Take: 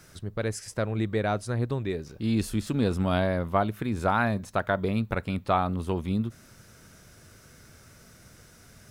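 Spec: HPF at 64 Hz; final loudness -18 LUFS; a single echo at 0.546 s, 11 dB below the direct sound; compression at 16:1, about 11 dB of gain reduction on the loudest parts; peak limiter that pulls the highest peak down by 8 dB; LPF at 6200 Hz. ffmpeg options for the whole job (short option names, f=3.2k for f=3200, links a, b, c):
-af "highpass=64,lowpass=6.2k,acompressor=threshold=-30dB:ratio=16,alimiter=level_in=4dB:limit=-24dB:level=0:latency=1,volume=-4dB,aecho=1:1:546:0.282,volume=20.5dB"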